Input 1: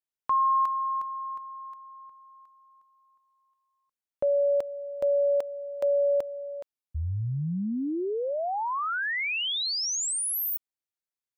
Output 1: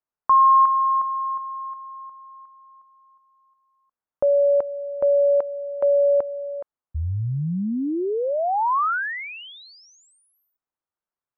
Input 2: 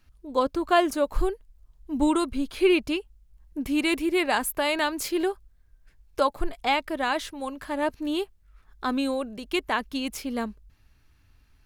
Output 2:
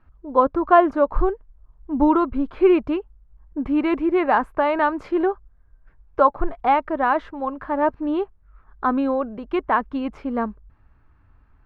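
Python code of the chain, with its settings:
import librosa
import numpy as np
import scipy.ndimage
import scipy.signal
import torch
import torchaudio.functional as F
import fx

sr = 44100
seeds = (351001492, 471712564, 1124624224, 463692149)

y = fx.lowpass_res(x, sr, hz=1200.0, q=1.6)
y = y * 10.0 ** (4.5 / 20.0)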